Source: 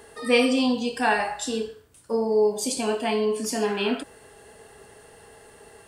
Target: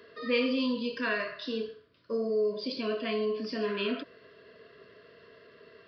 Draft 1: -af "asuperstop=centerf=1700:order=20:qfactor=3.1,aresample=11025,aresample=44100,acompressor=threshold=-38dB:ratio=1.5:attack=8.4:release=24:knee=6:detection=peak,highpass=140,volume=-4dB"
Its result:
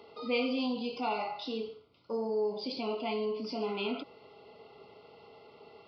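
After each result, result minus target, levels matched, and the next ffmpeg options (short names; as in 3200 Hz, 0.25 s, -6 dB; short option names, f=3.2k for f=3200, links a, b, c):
1000 Hz band +7.0 dB; compressor: peak gain reduction +3 dB
-af "asuperstop=centerf=810:order=20:qfactor=3.1,aresample=11025,aresample=44100,acompressor=threshold=-38dB:ratio=1.5:attack=8.4:release=24:knee=6:detection=peak,highpass=140,volume=-4dB"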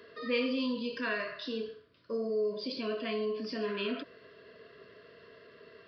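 compressor: peak gain reduction +3 dB
-af "asuperstop=centerf=810:order=20:qfactor=3.1,aresample=11025,aresample=44100,acompressor=threshold=-28.5dB:ratio=1.5:attack=8.4:release=24:knee=6:detection=peak,highpass=140,volume=-4dB"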